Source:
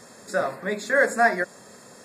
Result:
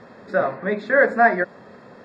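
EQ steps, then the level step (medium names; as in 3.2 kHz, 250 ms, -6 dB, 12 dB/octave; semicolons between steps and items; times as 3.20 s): distance through air 340 m; treble shelf 9.1 kHz -9 dB; +5.5 dB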